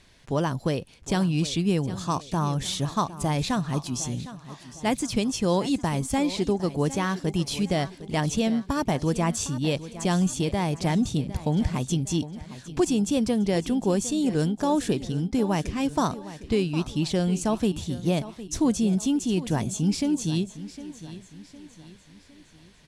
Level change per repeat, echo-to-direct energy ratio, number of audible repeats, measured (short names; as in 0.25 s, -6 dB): -7.0 dB, -14.0 dB, 3